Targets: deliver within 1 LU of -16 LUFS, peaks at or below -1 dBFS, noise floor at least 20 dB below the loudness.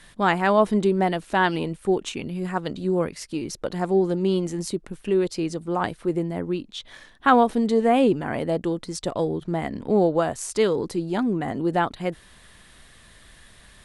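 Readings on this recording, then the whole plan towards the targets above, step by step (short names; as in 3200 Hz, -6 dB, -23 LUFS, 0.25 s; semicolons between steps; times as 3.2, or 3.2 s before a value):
loudness -24.0 LUFS; peak -4.5 dBFS; loudness target -16.0 LUFS
-> gain +8 dB; limiter -1 dBFS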